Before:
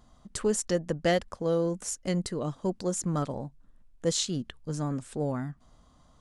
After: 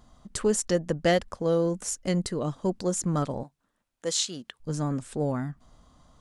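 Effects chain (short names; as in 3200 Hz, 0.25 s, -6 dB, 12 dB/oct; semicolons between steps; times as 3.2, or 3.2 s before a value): 3.43–4.6 HPF 720 Hz 6 dB/oct; gain +2.5 dB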